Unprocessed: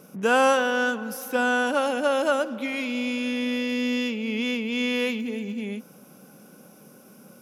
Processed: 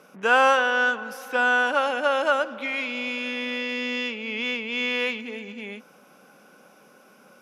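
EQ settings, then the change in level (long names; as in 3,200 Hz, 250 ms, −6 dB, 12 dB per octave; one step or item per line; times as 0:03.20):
resonant band-pass 1,600 Hz, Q 0.63
+4.5 dB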